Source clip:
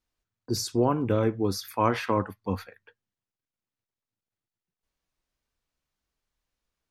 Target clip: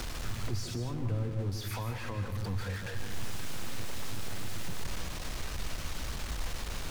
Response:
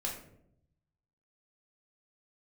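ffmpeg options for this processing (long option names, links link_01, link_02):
-filter_complex "[0:a]aeval=exprs='val(0)+0.5*0.0631*sgn(val(0))':channel_layout=same,highshelf=frequency=11000:gain=-10,acrossover=split=130[link_01][link_02];[link_02]acompressor=threshold=-37dB:ratio=10[link_03];[link_01][link_03]amix=inputs=2:normalize=0,asplit=2[link_04][link_05];[1:a]atrim=start_sample=2205,adelay=149[link_06];[link_05][link_06]afir=irnorm=-1:irlink=0,volume=-8.5dB[link_07];[link_04][link_07]amix=inputs=2:normalize=0,volume=-3dB"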